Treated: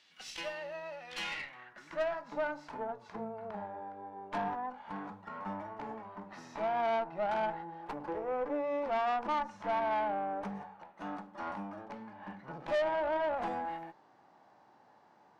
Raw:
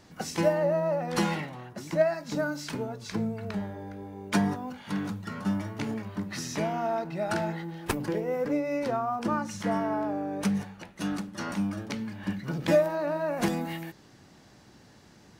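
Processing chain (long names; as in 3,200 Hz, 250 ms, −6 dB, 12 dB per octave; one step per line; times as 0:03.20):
band-pass filter sweep 3,100 Hz → 860 Hz, 0:01.13–0:02.41
tube saturation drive 35 dB, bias 0.55
harmonic and percussive parts rebalanced percussive −7 dB
level +7.5 dB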